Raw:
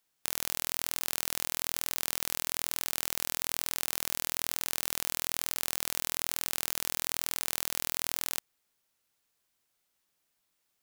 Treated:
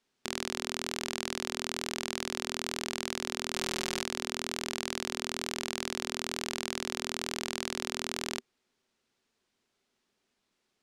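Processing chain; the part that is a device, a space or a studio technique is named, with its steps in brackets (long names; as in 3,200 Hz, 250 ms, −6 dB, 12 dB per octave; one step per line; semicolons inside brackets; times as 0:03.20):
0:03.52–0:04.03: comb filter 5.5 ms, depth 85%
inside a cardboard box (low-pass filter 5,600 Hz 12 dB per octave; hollow resonant body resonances 240/380 Hz, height 11 dB, ringing for 45 ms)
level +2.5 dB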